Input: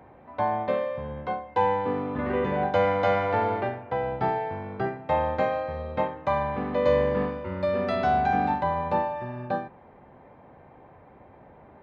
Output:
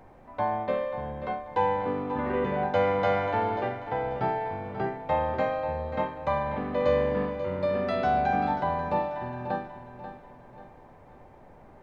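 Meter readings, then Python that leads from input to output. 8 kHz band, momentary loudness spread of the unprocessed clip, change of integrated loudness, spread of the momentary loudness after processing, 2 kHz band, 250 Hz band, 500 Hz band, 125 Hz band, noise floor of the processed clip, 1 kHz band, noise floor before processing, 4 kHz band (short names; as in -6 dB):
n/a, 9 LU, -1.5 dB, 9 LU, -1.5 dB, -1.5 dB, -1.5 dB, -2.0 dB, -52 dBFS, -1.5 dB, -52 dBFS, -1.5 dB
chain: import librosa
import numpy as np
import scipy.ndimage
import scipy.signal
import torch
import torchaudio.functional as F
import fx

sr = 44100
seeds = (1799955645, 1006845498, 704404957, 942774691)

p1 = fx.dmg_noise_colour(x, sr, seeds[0], colour='brown', level_db=-57.0)
p2 = p1 + fx.echo_feedback(p1, sr, ms=538, feedback_pct=40, wet_db=-11.5, dry=0)
y = p2 * 10.0 ** (-2.0 / 20.0)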